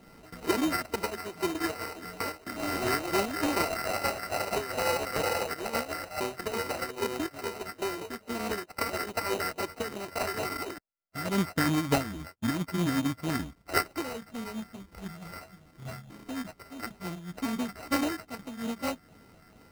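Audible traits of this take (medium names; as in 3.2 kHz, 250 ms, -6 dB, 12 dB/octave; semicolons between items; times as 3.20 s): a buzz of ramps at a fixed pitch in blocks of 32 samples; phasing stages 6, 2.3 Hz, lowest notch 780–4500 Hz; aliases and images of a low sample rate 3.4 kHz, jitter 0%; random flutter of the level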